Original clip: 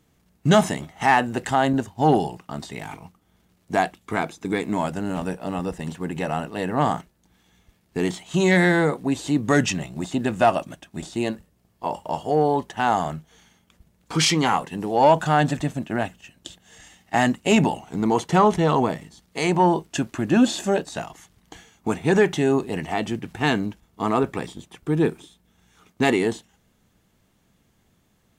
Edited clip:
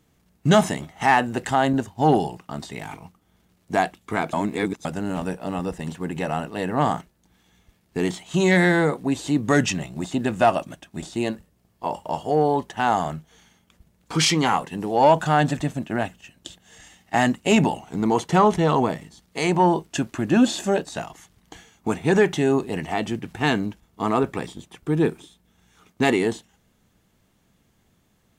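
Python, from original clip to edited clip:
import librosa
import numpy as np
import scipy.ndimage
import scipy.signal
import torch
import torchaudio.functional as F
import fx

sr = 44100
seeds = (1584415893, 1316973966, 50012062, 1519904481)

y = fx.edit(x, sr, fx.reverse_span(start_s=4.33, length_s=0.52), tone=tone)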